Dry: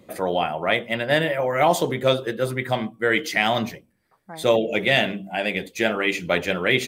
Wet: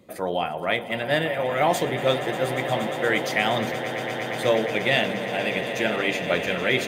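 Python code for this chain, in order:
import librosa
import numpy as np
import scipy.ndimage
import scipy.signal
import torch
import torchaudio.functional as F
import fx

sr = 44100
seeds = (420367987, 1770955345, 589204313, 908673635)

y = fx.echo_swell(x, sr, ms=118, loudest=8, wet_db=-15)
y = y * librosa.db_to_amplitude(-3.0)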